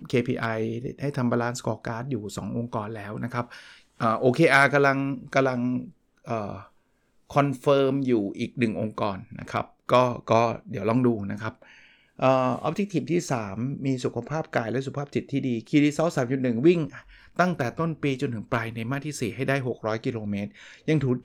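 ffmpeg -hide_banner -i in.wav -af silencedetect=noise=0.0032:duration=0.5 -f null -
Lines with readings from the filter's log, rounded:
silence_start: 6.68
silence_end: 7.30 | silence_duration: 0.62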